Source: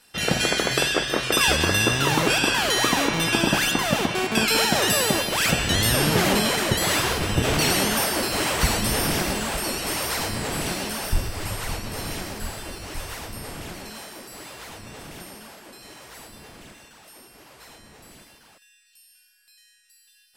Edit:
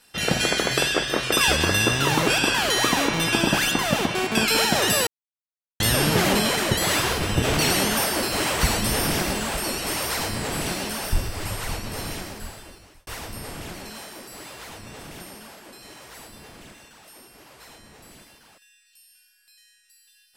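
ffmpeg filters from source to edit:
-filter_complex "[0:a]asplit=4[a][b][c][d];[a]atrim=end=5.07,asetpts=PTS-STARTPTS,afade=t=out:st=5.066:d=0.004:c=hsin[e];[b]atrim=start=5.07:end=5.8,asetpts=PTS-STARTPTS,volume=0[f];[c]atrim=start=5.8:end=13.07,asetpts=PTS-STARTPTS,afade=t=in:d=0.004:c=hsin,afade=t=out:st=6.21:d=1.06[g];[d]atrim=start=13.07,asetpts=PTS-STARTPTS,afade=t=in:d=0.004:c=hsin[h];[e][f][g][h]concat=n=4:v=0:a=1"

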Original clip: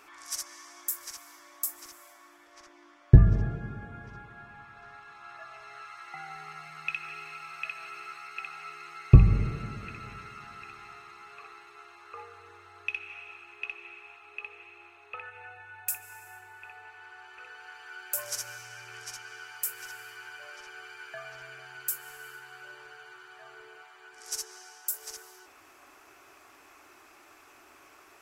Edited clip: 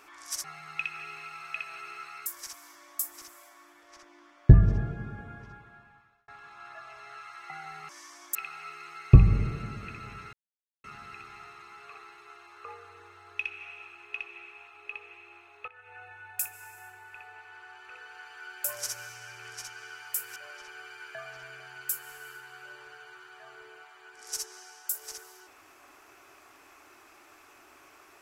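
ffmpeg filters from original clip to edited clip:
-filter_complex "[0:a]asplit=9[a][b][c][d][e][f][g][h][i];[a]atrim=end=0.442[j];[b]atrim=start=6.528:end=8.352[k];[c]atrim=start=0.898:end=4.92,asetpts=PTS-STARTPTS,afade=t=out:st=3.022:d=1[l];[d]atrim=start=4.92:end=6.532,asetpts=PTS-STARTPTS,afade=t=in:d=0.004:c=hsin[m];[e]atrim=start=0.438:end=0.902[n];[f]atrim=start=8.348:end=10.33,asetpts=PTS-STARTPTS,afade=t=out:st=1.978:d=0.004:c=hsin,apad=pad_dur=0.51[o];[g]atrim=start=10.33:end=15.17,asetpts=PTS-STARTPTS,afade=t=in:d=0.004:c=hsin,afade=t=out:st=4.836:d=0.004:c=hsin:silence=0.141254[p];[h]atrim=start=15.17:end=19.852,asetpts=PTS-STARTPTS,afade=t=in:d=0.36:silence=0.141254[q];[i]atrim=start=20.348[r];[j][k]acrossfade=d=0.004:c1=hsin:c2=hsin[s];[l][m]concat=n=2:v=0:a=1[t];[s][t]acrossfade=d=0.004:c1=hsin:c2=hsin[u];[u][n]acrossfade=d=0.004:c1=hsin:c2=hsin[v];[o][p][q]concat=n=3:v=0:a=1[w];[v][w]acrossfade=d=0.004:c1=hsin:c2=hsin[x];[x][r]acrossfade=d=0.004:c1=hsin:c2=hsin"

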